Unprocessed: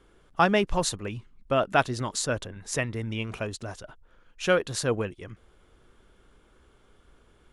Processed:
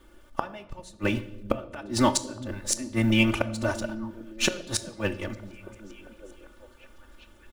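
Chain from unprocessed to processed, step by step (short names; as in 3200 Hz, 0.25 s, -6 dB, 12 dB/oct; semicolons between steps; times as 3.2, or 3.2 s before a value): G.711 law mismatch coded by A; comb 3.4 ms, depth 98%; flipped gate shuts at -18 dBFS, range -31 dB; delay with a stepping band-pass 0.397 s, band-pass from 160 Hz, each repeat 0.7 oct, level -9.5 dB; reverb RT60 1.1 s, pre-delay 9 ms, DRR 11.5 dB; gain +9 dB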